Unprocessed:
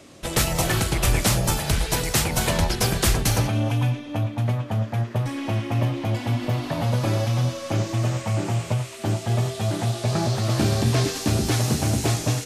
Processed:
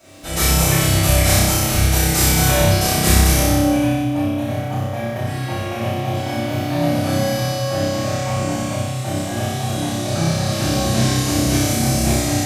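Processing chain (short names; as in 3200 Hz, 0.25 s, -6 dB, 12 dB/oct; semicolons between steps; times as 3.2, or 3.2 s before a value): HPF 75 Hz; high shelf 9900 Hz +7.5 dB; crackle 590/s -45 dBFS; flutter echo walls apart 5.3 m, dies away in 1.3 s; reverb RT60 0.45 s, pre-delay 3 ms, DRR -8.5 dB; gain -10.5 dB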